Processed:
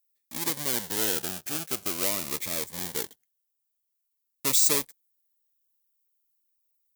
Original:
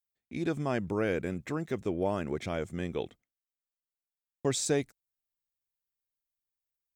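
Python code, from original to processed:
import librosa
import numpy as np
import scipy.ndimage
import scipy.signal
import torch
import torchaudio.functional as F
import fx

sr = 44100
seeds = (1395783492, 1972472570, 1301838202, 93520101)

y = fx.halfwave_hold(x, sr)
y = fx.riaa(y, sr, side='recording')
y = fx.notch_cascade(y, sr, direction='falling', hz=0.45)
y = y * 10.0 ** (-3.0 / 20.0)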